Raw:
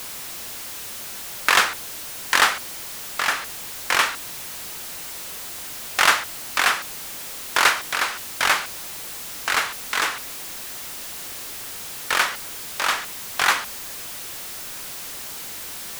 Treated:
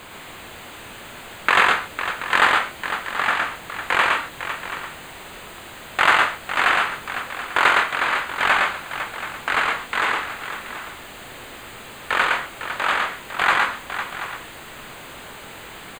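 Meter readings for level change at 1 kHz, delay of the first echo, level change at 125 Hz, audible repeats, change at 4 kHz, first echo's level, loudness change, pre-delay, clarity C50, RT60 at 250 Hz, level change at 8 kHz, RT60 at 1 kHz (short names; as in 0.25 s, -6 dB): +4.0 dB, 0.112 s, +4.5 dB, 4, -2.0 dB, -3.0 dB, +3.0 dB, none, none, none, -11.0 dB, none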